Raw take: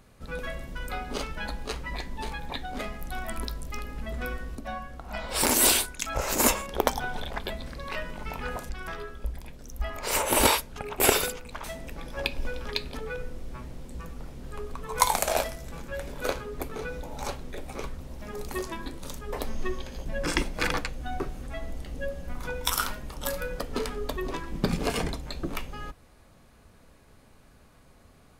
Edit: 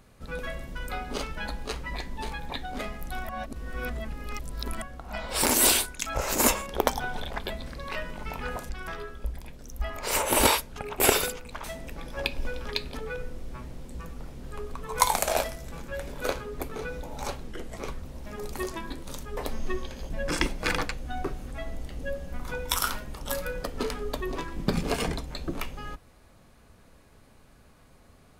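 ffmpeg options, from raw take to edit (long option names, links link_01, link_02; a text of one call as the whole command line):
ffmpeg -i in.wav -filter_complex "[0:a]asplit=5[link_01][link_02][link_03][link_04][link_05];[link_01]atrim=end=3.292[link_06];[link_02]atrim=start=3.288:end=4.822,asetpts=PTS-STARTPTS,areverse[link_07];[link_03]atrim=start=4.818:end=17.484[link_08];[link_04]atrim=start=17.48:end=17.73,asetpts=PTS-STARTPTS,asetrate=37485,aresample=44100[link_09];[link_05]atrim=start=17.726[link_10];[link_06][link_07]acrossfade=duration=0.004:curve1=hsin:curve2=hsin[link_11];[link_11][link_08]acrossfade=duration=0.004:curve1=hsin:curve2=hsin[link_12];[link_12][link_09]acrossfade=duration=0.004:curve1=hsin:curve2=hsin[link_13];[link_13][link_10]acrossfade=duration=0.004:curve1=hsin:curve2=hsin" out.wav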